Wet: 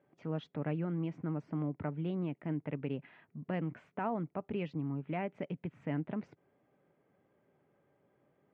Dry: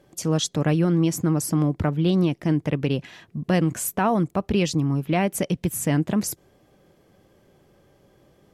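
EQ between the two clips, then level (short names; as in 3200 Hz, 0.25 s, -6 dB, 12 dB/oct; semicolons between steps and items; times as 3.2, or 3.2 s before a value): dynamic EQ 1300 Hz, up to -3 dB, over -37 dBFS, Q 1.2; speaker cabinet 190–2100 Hz, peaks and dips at 200 Hz -6 dB, 340 Hz -8 dB, 510 Hz -6 dB, 730 Hz -4 dB, 1100 Hz -5 dB, 1700 Hz -5 dB; -8.0 dB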